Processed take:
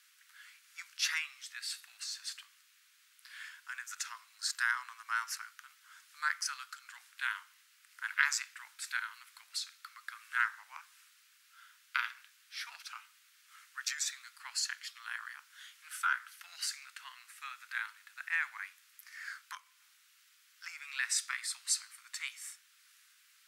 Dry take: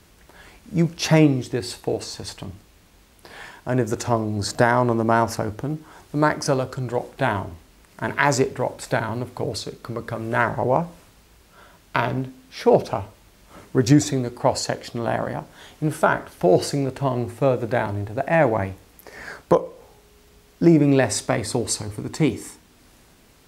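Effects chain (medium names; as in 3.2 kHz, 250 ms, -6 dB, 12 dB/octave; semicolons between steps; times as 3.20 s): steep high-pass 1.3 kHz 48 dB/octave; trim -6.5 dB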